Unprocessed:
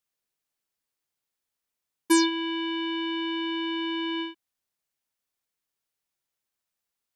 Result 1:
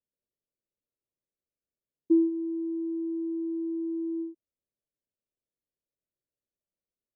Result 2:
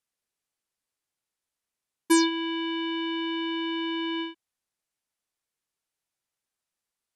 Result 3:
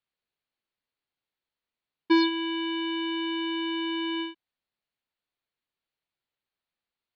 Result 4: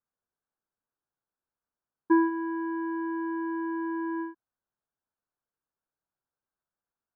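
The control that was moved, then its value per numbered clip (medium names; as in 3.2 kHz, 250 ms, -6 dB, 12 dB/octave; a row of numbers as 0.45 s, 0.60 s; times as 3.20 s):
Chebyshev low-pass, frequency: 610 Hz, 12 kHz, 4.4 kHz, 1.6 kHz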